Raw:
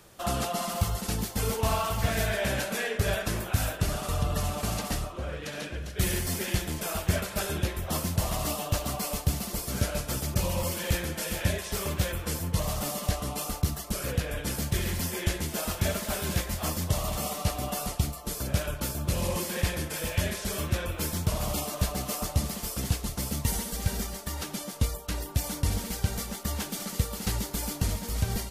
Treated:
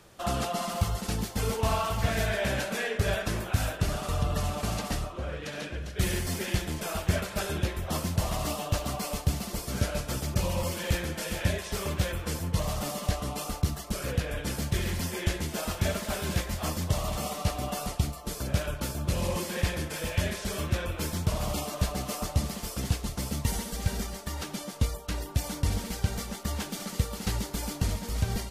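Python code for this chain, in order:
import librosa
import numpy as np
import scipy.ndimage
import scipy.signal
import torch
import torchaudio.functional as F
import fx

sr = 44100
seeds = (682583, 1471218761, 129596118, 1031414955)

y = fx.high_shelf(x, sr, hz=9900.0, db=-9.0)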